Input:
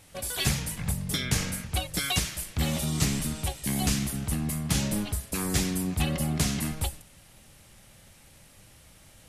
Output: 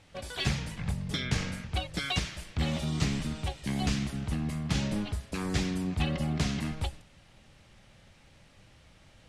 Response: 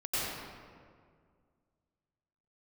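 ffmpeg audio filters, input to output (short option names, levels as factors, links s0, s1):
-af "lowpass=4600,volume=0.794"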